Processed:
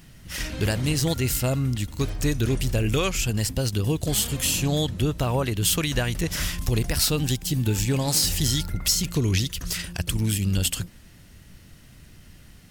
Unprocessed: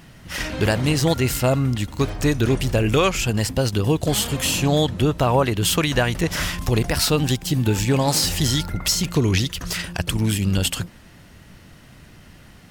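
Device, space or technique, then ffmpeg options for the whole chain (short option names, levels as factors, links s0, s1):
smiley-face EQ: -af "lowshelf=f=83:g=8,equalizer=f=880:t=o:w=1.6:g=-4.5,highshelf=f=5100:g=7.5,volume=0.531"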